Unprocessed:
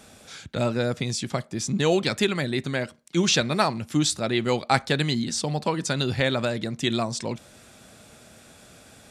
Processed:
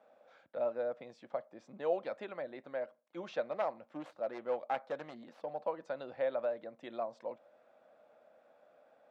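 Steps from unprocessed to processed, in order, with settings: 3.51–5.61 self-modulated delay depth 0.34 ms; ladder band-pass 610 Hz, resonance 55%; bell 410 Hz -11 dB 0.43 oct; gain +1 dB

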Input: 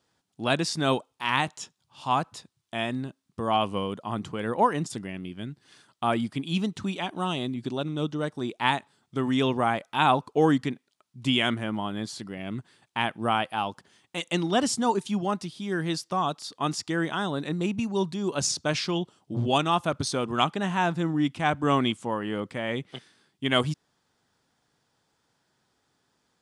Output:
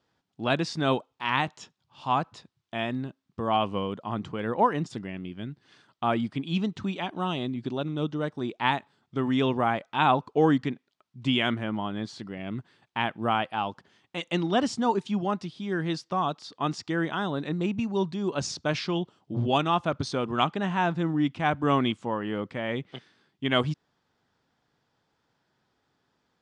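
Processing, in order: air absorption 120 m

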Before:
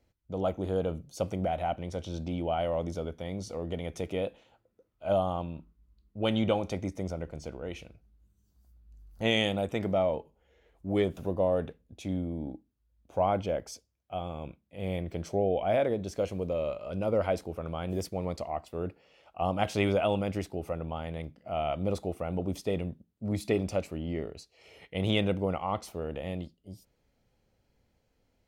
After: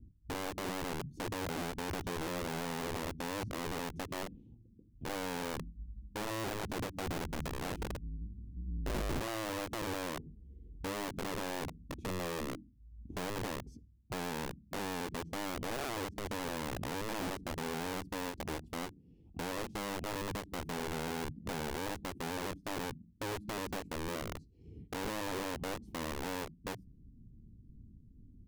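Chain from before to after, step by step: 6.44–9.27 half-waves squared off; inverse Chebyshev low-pass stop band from 550 Hz, stop band 40 dB; compressor 6:1, threshold -46 dBFS, peak gain reduction 21 dB; limiter -47 dBFS, peak gain reduction 10 dB; wrapped overs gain 50.5 dB; ending taper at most 210 dB/s; gain +18 dB

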